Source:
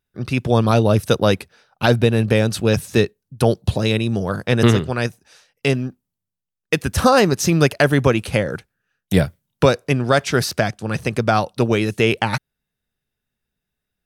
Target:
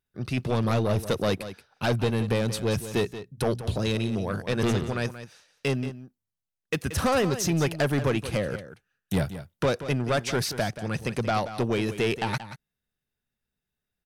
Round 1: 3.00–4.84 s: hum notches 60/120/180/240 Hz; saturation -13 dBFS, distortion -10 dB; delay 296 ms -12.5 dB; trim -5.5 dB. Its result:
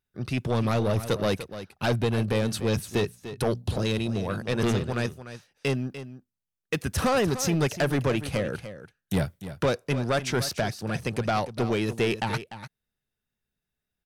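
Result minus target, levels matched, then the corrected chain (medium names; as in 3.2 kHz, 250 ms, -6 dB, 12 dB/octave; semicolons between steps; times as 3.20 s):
echo 116 ms late
3.00–4.84 s: hum notches 60/120/180/240 Hz; saturation -13 dBFS, distortion -10 dB; delay 180 ms -12.5 dB; trim -5.5 dB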